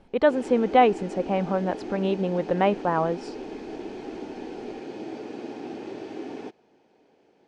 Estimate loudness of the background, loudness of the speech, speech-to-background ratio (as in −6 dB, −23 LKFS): −37.0 LKFS, −24.0 LKFS, 13.0 dB